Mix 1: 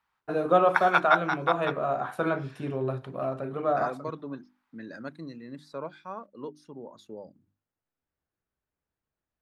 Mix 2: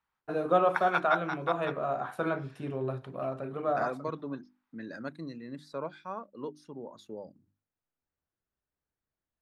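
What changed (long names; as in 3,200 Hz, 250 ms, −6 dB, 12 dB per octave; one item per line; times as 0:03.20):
first voice −3.5 dB
background −7.0 dB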